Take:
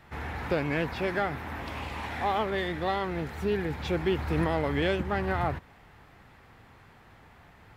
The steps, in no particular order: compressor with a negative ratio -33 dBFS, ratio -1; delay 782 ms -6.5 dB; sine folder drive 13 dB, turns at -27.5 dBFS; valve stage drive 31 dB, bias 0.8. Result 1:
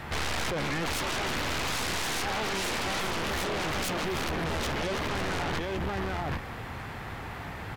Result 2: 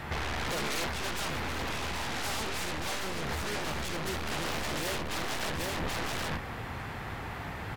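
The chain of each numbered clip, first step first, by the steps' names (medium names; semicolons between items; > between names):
compressor with a negative ratio > valve stage > delay > sine folder; valve stage > sine folder > delay > compressor with a negative ratio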